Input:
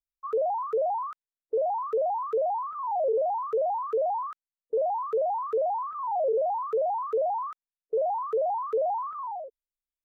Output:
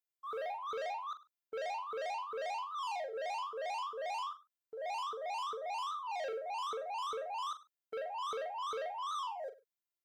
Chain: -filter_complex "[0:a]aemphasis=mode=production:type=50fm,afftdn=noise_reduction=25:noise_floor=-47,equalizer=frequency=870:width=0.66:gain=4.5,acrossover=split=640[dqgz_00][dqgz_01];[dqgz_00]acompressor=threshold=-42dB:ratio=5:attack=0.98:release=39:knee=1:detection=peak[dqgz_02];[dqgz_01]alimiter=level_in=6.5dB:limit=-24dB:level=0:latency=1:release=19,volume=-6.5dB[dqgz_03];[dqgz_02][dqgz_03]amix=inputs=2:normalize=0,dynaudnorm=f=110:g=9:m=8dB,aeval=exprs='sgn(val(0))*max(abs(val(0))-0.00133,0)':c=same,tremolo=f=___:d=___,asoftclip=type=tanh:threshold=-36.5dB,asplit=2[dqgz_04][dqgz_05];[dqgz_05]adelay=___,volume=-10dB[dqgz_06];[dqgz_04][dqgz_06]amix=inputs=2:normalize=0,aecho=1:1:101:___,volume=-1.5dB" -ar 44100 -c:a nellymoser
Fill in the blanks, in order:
2.4, 0.88, 42, 0.1